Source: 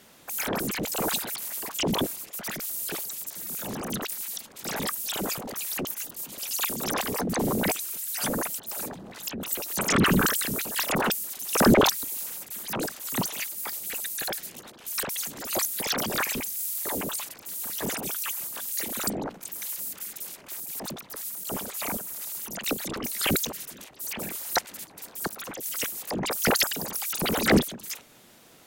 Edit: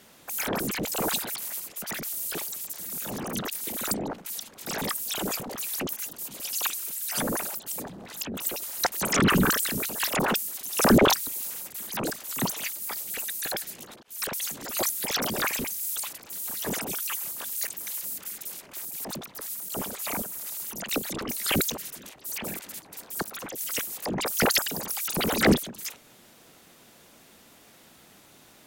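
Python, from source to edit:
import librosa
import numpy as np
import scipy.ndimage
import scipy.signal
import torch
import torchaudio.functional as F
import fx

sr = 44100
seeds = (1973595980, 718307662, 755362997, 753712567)

y = fx.edit(x, sr, fx.cut(start_s=1.6, length_s=0.57),
    fx.cut(start_s=6.66, length_s=1.08),
    fx.reverse_span(start_s=8.48, length_s=0.36),
    fx.fade_in_span(start_s=14.79, length_s=0.34, curve='qsin'),
    fx.cut(start_s=16.72, length_s=0.4),
    fx.move(start_s=18.83, length_s=0.59, to_s=4.24),
    fx.move(start_s=24.34, length_s=0.3, to_s=9.68), tone=tone)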